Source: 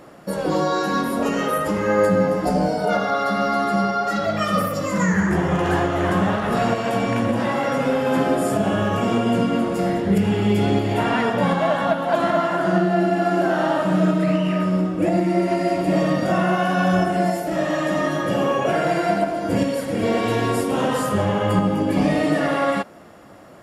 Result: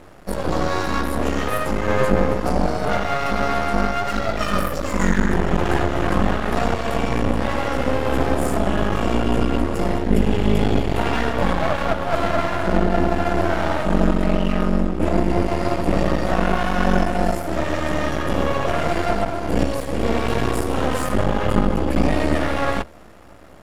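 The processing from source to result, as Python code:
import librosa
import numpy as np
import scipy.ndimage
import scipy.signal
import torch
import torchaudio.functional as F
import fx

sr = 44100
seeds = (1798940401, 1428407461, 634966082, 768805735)

y = fx.octave_divider(x, sr, octaves=2, level_db=1.0)
y = np.maximum(y, 0.0)
y = F.gain(torch.from_numpy(y), 2.5).numpy()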